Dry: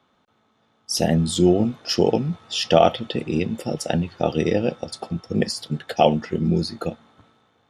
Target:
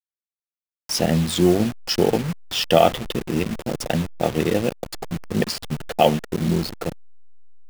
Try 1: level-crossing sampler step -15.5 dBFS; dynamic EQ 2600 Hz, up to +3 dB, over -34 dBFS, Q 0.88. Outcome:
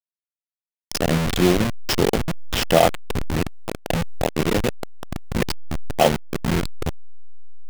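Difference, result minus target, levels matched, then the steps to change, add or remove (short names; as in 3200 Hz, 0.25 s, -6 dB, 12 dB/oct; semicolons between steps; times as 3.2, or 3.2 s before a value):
level-crossing sampler: distortion +12 dB
change: level-crossing sampler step -26 dBFS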